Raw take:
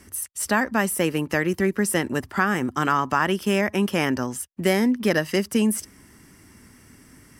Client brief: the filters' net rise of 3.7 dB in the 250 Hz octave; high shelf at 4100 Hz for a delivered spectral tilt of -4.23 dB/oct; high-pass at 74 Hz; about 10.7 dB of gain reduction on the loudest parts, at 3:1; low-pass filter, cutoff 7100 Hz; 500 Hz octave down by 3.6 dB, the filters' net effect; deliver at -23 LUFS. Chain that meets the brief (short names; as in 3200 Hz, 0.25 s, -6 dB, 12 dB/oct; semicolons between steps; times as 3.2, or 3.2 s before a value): HPF 74 Hz; LPF 7100 Hz; bell 250 Hz +6.5 dB; bell 500 Hz -8 dB; high shelf 4100 Hz +7 dB; compressor 3:1, threshold -28 dBFS; gain +6.5 dB